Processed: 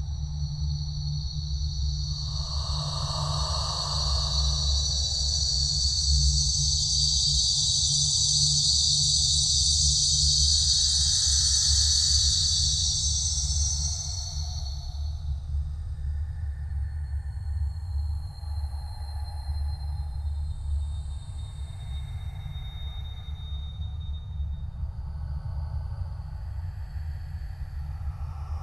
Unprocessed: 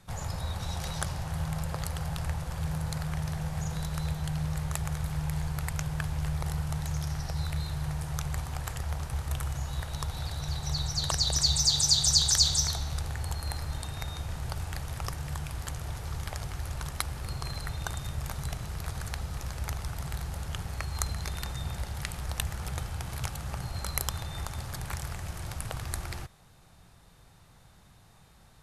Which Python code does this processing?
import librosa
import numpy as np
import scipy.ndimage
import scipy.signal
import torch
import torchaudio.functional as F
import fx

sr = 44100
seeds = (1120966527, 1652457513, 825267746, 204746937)

y = fx.spec_expand(x, sr, power=1.8)
y = fx.paulstretch(y, sr, seeds[0], factor=6.5, window_s=0.5, from_s=10.56)
y = y * librosa.db_to_amplitude(1.5)